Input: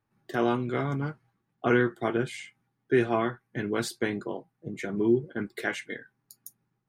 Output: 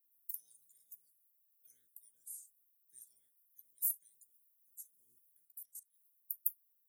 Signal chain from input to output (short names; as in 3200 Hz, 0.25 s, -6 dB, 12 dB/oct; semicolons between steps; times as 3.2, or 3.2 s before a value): spectral limiter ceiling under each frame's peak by 18 dB; inverse Chebyshev high-pass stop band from 2900 Hz, stop band 80 dB; 5.45–5.94 level quantiser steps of 16 dB; gain +16.5 dB